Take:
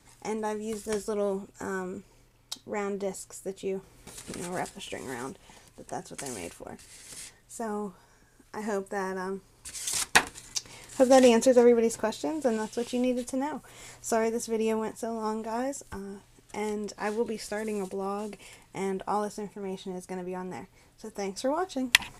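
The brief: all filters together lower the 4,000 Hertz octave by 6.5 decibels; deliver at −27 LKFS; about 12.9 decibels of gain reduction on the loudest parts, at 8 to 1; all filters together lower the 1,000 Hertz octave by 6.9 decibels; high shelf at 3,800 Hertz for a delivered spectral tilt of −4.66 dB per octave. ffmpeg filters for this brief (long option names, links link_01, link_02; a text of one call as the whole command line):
ffmpeg -i in.wav -af "equalizer=frequency=1000:width_type=o:gain=-9,highshelf=frequency=3800:gain=-7,equalizer=frequency=4000:width_type=o:gain=-3.5,acompressor=threshold=-30dB:ratio=8,volume=10.5dB" out.wav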